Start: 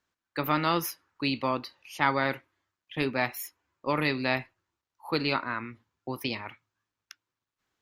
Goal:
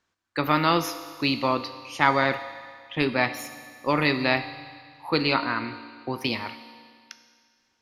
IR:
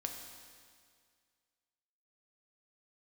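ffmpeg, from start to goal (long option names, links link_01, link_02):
-filter_complex "[0:a]lowpass=7000,asplit=2[link_01][link_02];[1:a]atrim=start_sample=2205,highshelf=frequency=6000:gain=10[link_03];[link_02][link_03]afir=irnorm=-1:irlink=0,volume=-1dB[link_04];[link_01][link_04]amix=inputs=2:normalize=0"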